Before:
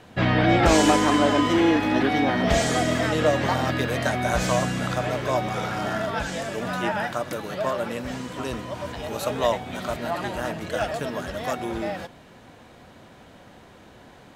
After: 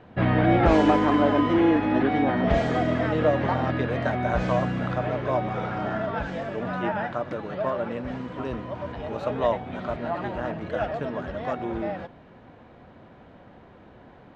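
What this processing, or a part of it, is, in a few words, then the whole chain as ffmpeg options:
phone in a pocket: -af "lowpass=3.5k,highshelf=f=2.3k:g=-11"

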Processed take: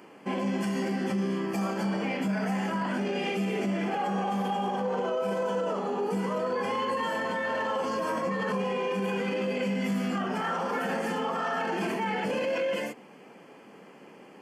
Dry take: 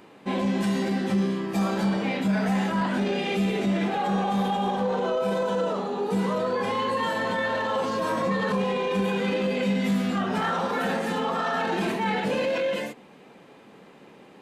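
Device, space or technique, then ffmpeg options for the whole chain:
PA system with an anti-feedback notch: -af "highpass=160,asuperstop=centerf=3800:order=4:qfactor=4.2,alimiter=limit=-21.5dB:level=0:latency=1:release=85"

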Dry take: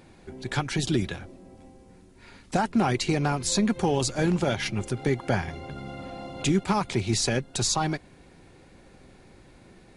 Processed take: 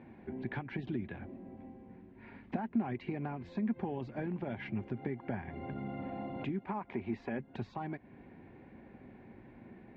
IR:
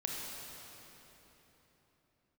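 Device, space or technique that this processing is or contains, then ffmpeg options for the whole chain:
bass amplifier: -filter_complex "[0:a]asettb=1/sr,asplit=3[a][b][c];[a]atrim=end=6.664[d];[b]atrim=start=6.66:end=7.39,asetpts=PTS-STARTPTS,afade=t=in:d=0.004:c=qsin,afade=t=out:st=0.726:d=0.004:c=qsin,equalizer=f=125:t=o:w=1:g=-10,equalizer=f=1k:t=o:w=1:g=4,equalizer=f=4k:t=o:w=1:g=-5[e];[c]atrim=start=7.386[f];[d][e]acrossfade=d=0.004:c1=hsin:c2=qsin[g];[g][f]acrossfade=d=0.004:c1=qsin:c2=hsin,acompressor=threshold=-34dB:ratio=5,highpass=63,equalizer=f=69:t=q:w=4:g=-7,equalizer=f=160:t=q:w=4:g=-3,equalizer=f=230:t=q:w=4:g=7,equalizer=f=510:t=q:w=4:g=-4,equalizer=f=1.3k:t=q:w=4:g=-9,lowpass=f=2.2k:w=0.5412,lowpass=f=2.2k:w=1.3066,volume=-1dB"

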